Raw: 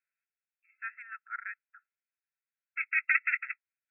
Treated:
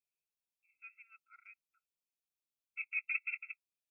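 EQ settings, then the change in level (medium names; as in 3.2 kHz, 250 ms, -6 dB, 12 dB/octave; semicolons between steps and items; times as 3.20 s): Chebyshev band-stop 1.2–2.5 kHz, order 2; peaking EQ 1.3 kHz -14.5 dB 0.86 oct; 0.0 dB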